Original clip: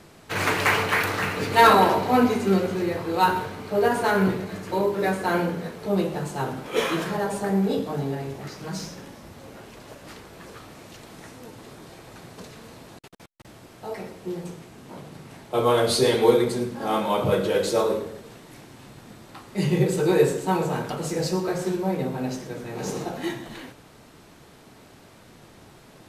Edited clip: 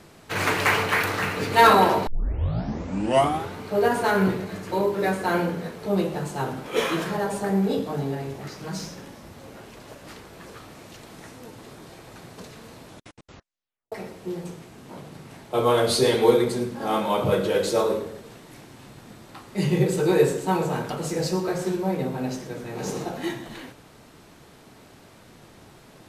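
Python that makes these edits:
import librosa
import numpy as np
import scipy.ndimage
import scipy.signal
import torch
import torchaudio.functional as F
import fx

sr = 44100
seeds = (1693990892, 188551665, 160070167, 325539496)

y = fx.edit(x, sr, fx.tape_start(start_s=2.07, length_s=1.52),
    fx.tape_stop(start_s=12.85, length_s=1.07), tone=tone)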